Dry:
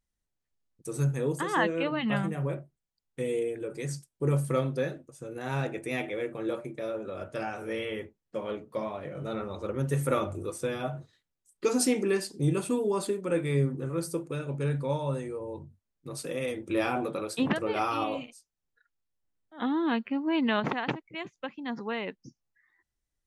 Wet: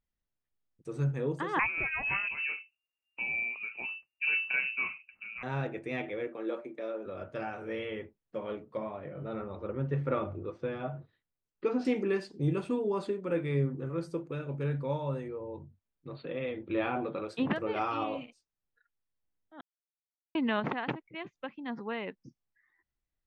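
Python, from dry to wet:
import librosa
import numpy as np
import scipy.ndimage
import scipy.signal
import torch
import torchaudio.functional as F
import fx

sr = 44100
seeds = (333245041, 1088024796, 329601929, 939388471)

y = fx.freq_invert(x, sr, carrier_hz=2800, at=(1.59, 5.43))
y = fx.highpass(y, sr, hz=230.0, slope=24, at=(6.27, 7.06))
y = fx.air_absorb(y, sr, metres=230.0, at=(8.77, 11.85))
y = fx.brickwall_lowpass(y, sr, high_hz=4600.0, at=(15.28, 17.27))
y = fx.edit(y, sr, fx.silence(start_s=19.61, length_s=0.74), tone=tone)
y = scipy.signal.sosfilt(scipy.signal.butter(2, 3300.0, 'lowpass', fs=sr, output='sos'), y)
y = F.gain(torch.from_numpy(y), -3.0).numpy()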